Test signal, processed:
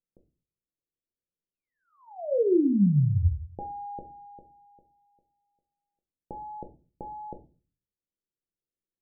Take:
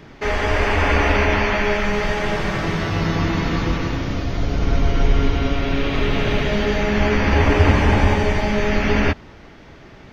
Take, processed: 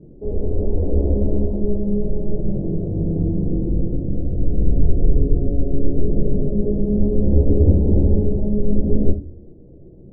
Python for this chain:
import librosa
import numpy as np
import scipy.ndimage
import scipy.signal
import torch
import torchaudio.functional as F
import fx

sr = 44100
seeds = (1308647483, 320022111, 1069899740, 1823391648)

y = scipy.signal.sosfilt(scipy.signal.butter(6, 510.0, 'lowpass', fs=sr, output='sos'), x)
y = fx.room_shoebox(y, sr, seeds[0], volume_m3=150.0, walls='furnished', distance_m=0.82)
y = y * librosa.db_to_amplitude(-1.0)